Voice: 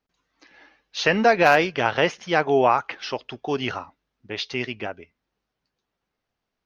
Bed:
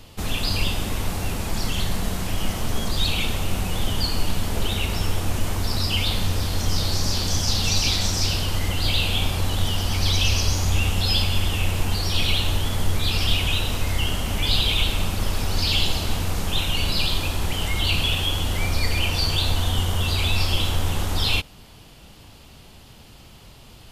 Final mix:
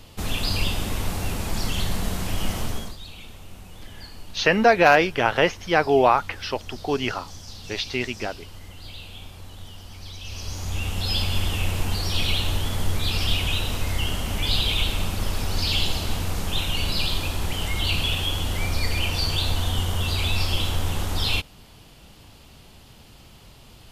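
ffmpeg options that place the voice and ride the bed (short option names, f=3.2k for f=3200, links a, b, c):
-filter_complex "[0:a]adelay=3400,volume=1dB[a];[1:a]volume=15dB,afade=t=out:st=2.6:d=0.37:silence=0.141254,afade=t=in:st=10.22:d=1.15:silence=0.158489[b];[a][b]amix=inputs=2:normalize=0"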